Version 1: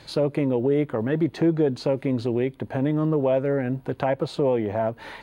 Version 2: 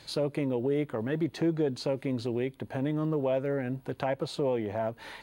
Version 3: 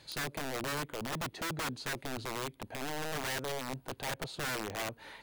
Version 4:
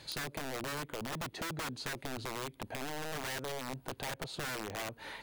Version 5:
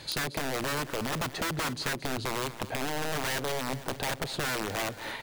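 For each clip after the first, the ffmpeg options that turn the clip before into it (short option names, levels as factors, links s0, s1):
-af "highshelf=f=3200:g=8.5,volume=0.447"
-af "aeval=exprs='(mod(18.8*val(0)+1,2)-1)/18.8':c=same,volume=0.531"
-af "acompressor=threshold=0.00794:ratio=5,volume=1.68"
-af "aecho=1:1:226|452|678|904|1130:0.188|0.102|0.0549|0.0297|0.016,volume=2.37"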